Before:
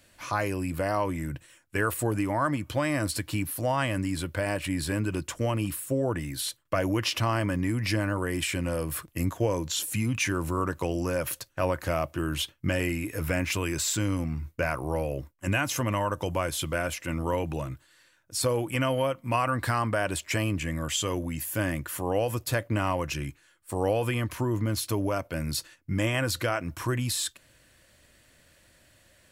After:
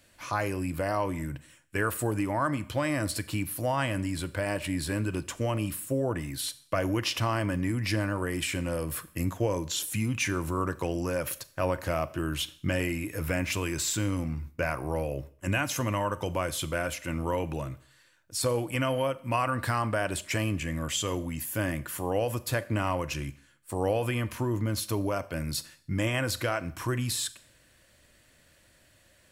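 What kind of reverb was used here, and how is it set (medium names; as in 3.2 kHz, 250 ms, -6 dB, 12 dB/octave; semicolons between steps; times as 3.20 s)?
Schroeder reverb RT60 0.56 s, combs from 29 ms, DRR 16 dB; trim -1.5 dB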